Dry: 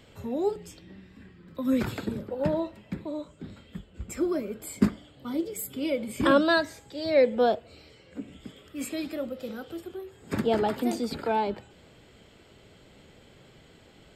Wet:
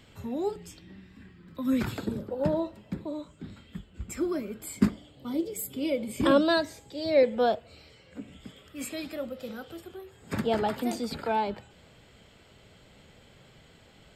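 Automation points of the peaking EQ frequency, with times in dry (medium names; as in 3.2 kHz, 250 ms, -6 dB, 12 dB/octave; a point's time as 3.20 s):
peaking EQ -5.5 dB 0.92 oct
510 Hz
from 1.97 s 2.2 kHz
from 3.13 s 520 Hz
from 4.87 s 1.5 kHz
from 7.23 s 340 Hz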